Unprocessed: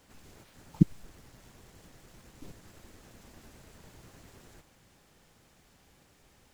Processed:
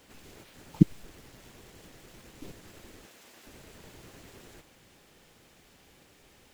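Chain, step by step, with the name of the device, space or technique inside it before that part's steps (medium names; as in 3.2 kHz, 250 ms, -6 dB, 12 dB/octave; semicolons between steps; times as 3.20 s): presence and air boost (peaking EQ 2.8 kHz +6 dB 1.7 oct; treble shelf 9.8 kHz +6 dB); 3.06–3.47 s: high-pass 690 Hz 6 dB/octave; peaking EQ 390 Hz +5.5 dB 1.6 oct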